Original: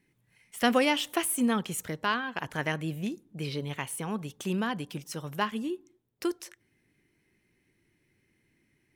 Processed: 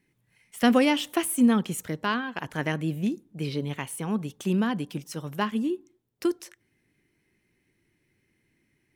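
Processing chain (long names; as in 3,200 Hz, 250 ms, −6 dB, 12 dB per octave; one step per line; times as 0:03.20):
dynamic equaliser 240 Hz, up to +7 dB, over −42 dBFS, Q 0.86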